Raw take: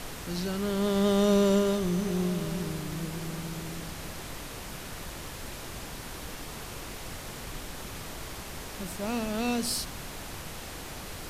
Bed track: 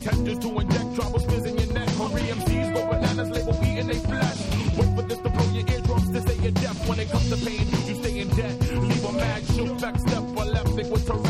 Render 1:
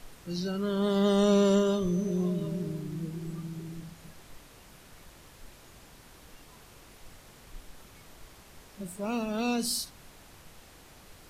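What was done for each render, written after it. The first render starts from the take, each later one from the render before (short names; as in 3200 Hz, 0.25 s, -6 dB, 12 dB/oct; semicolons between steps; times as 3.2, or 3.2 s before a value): noise print and reduce 13 dB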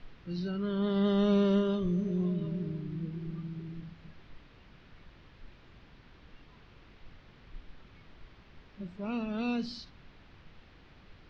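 Bessel low-pass 2700 Hz, order 8; bell 690 Hz -7 dB 1.9 oct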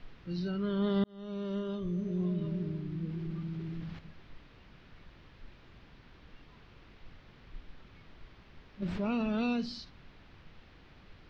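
1.04–2.47 fade in; 3.09–3.99 fast leveller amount 50%; 8.82–9.53 fast leveller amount 70%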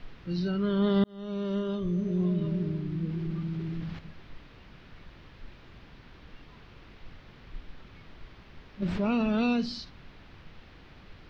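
gain +5 dB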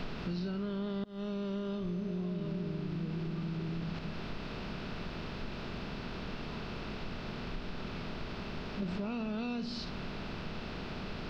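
per-bin compression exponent 0.6; compressor 6:1, threshold -34 dBFS, peak gain reduction 15 dB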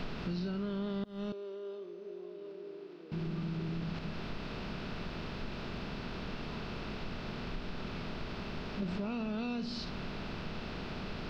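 1.32–3.12 ladder high-pass 350 Hz, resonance 60%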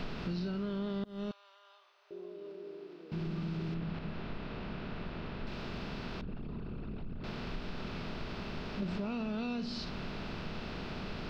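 1.31–2.11 steep high-pass 790 Hz; 3.74–5.47 air absorption 200 m; 6.21–7.24 formant sharpening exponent 2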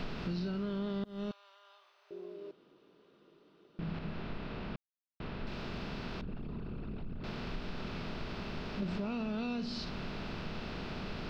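2.51–3.79 room tone; 4.76–5.2 mute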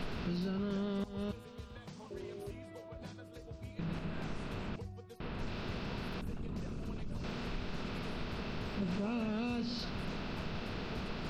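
add bed track -25 dB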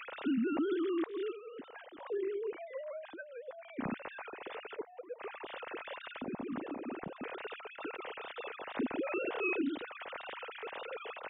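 sine-wave speech; wow and flutter 76 cents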